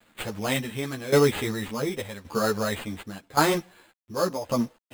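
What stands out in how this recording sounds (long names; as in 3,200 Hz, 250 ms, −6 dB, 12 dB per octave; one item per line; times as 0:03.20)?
a quantiser's noise floor 10 bits, dither none
tremolo saw down 0.89 Hz, depth 85%
aliases and images of a low sample rate 5,700 Hz, jitter 0%
a shimmering, thickened sound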